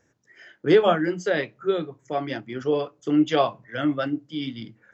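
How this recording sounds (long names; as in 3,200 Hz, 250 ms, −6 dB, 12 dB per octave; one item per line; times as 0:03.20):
background noise floor −67 dBFS
spectral slope −4.5 dB per octave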